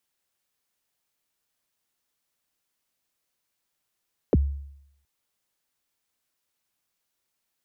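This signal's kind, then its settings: kick drum length 0.72 s, from 580 Hz, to 70 Hz, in 31 ms, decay 0.76 s, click off, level -13.5 dB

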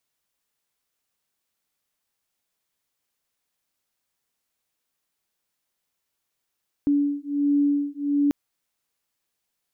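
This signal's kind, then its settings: beating tones 286 Hz, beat 1.4 Hz, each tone -22.5 dBFS 1.44 s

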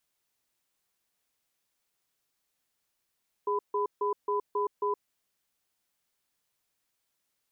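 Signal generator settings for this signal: cadence 412 Hz, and 1 kHz, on 0.12 s, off 0.15 s, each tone -28.5 dBFS 1.62 s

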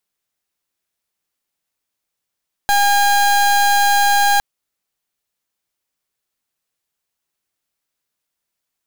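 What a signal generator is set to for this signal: pulse 811 Hz, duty 30% -13.5 dBFS 1.71 s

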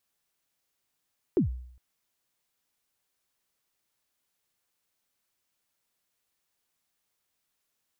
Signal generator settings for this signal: kick drum length 0.41 s, from 420 Hz, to 62 Hz, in 117 ms, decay 0.66 s, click off, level -17.5 dB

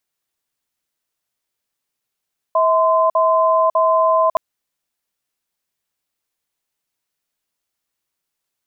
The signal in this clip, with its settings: cadence 646 Hz, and 1.03 kHz, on 0.55 s, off 0.05 s, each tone -14.5 dBFS 1.82 s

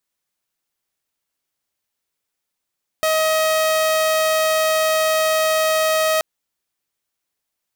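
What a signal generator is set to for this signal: tone saw 632 Hz -13 dBFS 3.18 s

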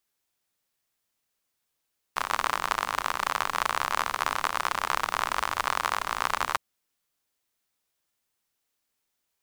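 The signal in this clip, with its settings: rain from filtered ticks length 4.41 s, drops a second 56, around 1.1 kHz, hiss -17 dB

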